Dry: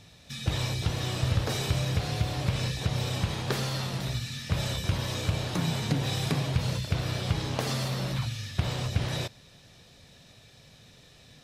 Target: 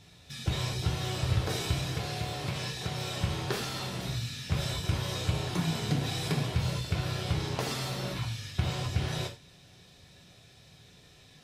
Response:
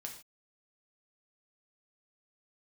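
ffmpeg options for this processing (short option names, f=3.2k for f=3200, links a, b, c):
-filter_complex "[0:a]asettb=1/sr,asplit=3[a][b][c];[a]atrim=end=1.944[d];[b]atrim=start=1.94:end=3.21,asetpts=PTS-STARTPTS,afade=t=in:d=0.004:c=qsin,afade=t=out:st=1.266:d=0.004:c=qsin,highpass=f=200:p=1[e];[c]atrim=start=3.206[f];[d][e]acrossfade=d=0.004:c1=hsin:c2=qsin[g];[g][f]acrossfade=d=0.004:c1=qsin:c2=hsin[h];[1:a]atrim=start_sample=2205,asetrate=66150,aresample=44100[i];[h][i]afir=irnorm=-1:irlink=0,volume=5dB"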